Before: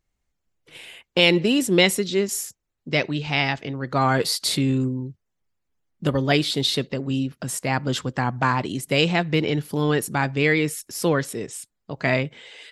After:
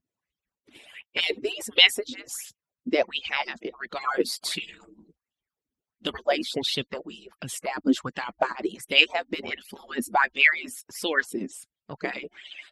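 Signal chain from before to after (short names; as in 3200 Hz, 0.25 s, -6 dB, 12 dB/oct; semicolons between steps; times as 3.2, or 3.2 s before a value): median-filter separation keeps percussive; LFO bell 1.4 Hz 240–3300 Hz +17 dB; gain -7 dB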